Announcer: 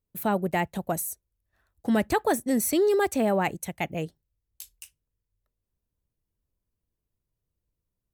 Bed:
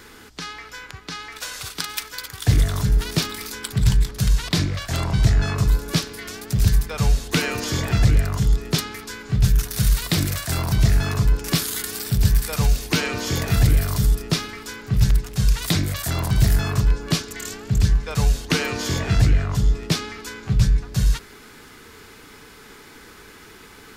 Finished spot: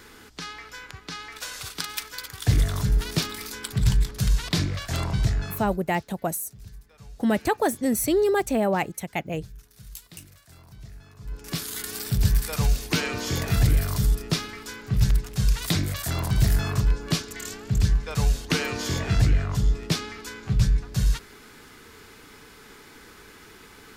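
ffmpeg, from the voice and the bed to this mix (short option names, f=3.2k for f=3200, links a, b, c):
-filter_complex "[0:a]adelay=5350,volume=1dB[a];[1:a]volume=20dB,afade=t=out:st=5.03:d=0.76:silence=0.0668344,afade=t=in:st=11.19:d=0.78:silence=0.0668344[b];[a][b]amix=inputs=2:normalize=0"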